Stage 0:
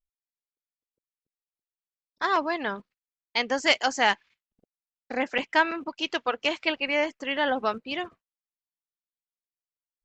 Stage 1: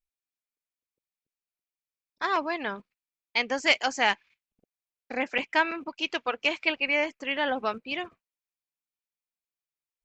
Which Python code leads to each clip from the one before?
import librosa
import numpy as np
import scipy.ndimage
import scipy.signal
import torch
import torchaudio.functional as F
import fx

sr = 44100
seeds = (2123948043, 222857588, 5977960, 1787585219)

y = fx.peak_eq(x, sr, hz=2400.0, db=7.0, octaves=0.28)
y = y * librosa.db_to_amplitude(-2.5)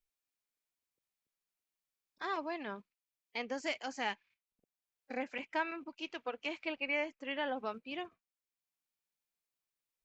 y = fx.hpss(x, sr, part='percussive', gain_db=-9)
y = fx.band_squash(y, sr, depth_pct=40)
y = y * librosa.db_to_amplitude(-7.5)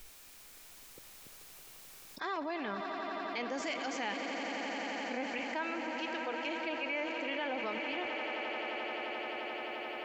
y = fx.echo_swell(x, sr, ms=87, loudest=8, wet_db=-14.0)
y = fx.env_flatten(y, sr, amount_pct=70)
y = y * librosa.db_to_amplitude(-4.0)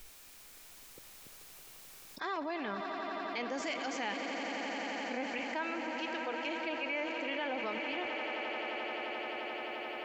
y = x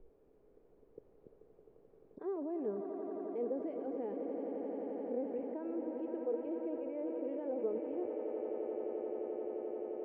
y = fx.lowpass_res(x, sr, hz=440.0, q=4.9)
y = y * librosa.db_to_amplitude(-4.0)